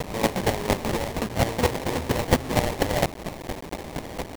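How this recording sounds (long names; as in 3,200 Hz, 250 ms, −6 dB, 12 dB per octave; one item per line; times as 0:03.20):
a quantiser's noise floor 6 bits, dither triangular
chopped level 4.3 Hz, depth 65%, duty 15%
aliases and images of a low sample rate 1,400 Hz, jitter 20%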